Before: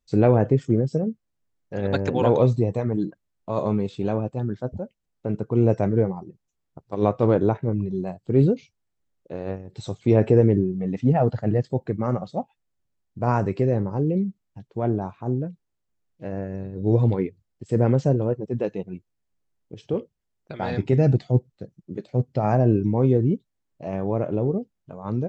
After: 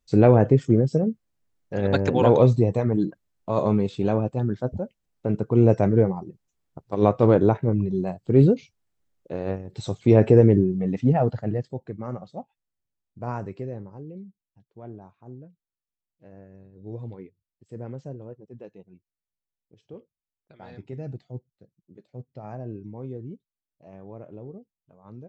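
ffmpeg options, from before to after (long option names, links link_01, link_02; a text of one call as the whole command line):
ffmpeg -i in.wav -af "volume=2dB,afade=type=out:start_time=10.76:duration=1.01:silence=0.298538,afade=type=out:start_time=13.22:duration=0.82:silence=0.375837" out.wav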